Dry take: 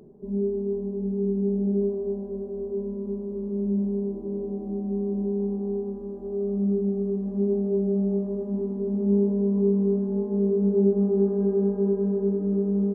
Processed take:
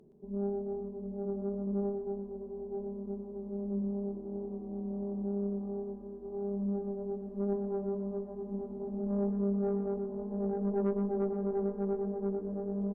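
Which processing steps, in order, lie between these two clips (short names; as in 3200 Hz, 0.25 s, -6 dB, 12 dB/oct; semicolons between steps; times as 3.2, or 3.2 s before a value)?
tube stage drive 19 dB, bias 0.8; echo 0.12 s -8.5 dB; gain -5.5 dB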